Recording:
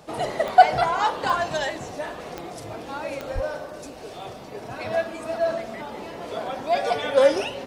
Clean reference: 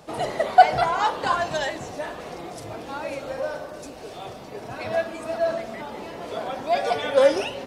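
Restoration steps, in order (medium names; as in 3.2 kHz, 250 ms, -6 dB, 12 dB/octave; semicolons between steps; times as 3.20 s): de-click; 3.34–3.46 s: high-pass 140 Hz 24 dB/octave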